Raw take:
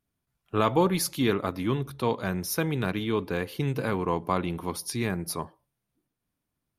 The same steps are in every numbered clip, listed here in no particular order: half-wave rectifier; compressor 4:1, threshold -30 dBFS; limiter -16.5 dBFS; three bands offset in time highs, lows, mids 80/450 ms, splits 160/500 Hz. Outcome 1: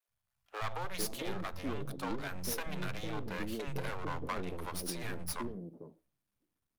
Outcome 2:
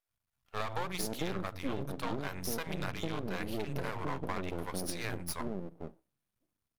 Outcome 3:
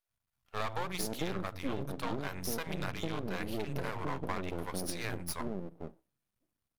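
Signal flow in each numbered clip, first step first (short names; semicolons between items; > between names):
half-wave rectifier > limiter > compressor > three bands offset in time; three bands offset in time > limiter > half-wave rectifier > compressor; three bands offset in time > half-wave rectifier > limiter > compressor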